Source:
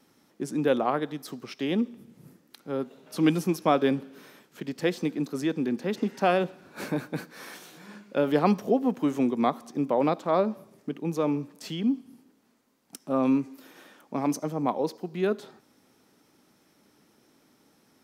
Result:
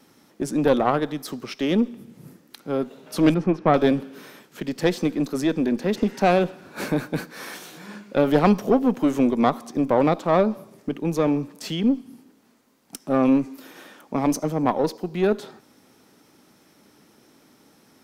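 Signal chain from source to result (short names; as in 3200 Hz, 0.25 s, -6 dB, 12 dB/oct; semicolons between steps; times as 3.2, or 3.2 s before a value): one diode to ground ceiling -22 dBFS; 3.34–3.74 LPF 1900 Hz 12 dB/oct; gain +7 dB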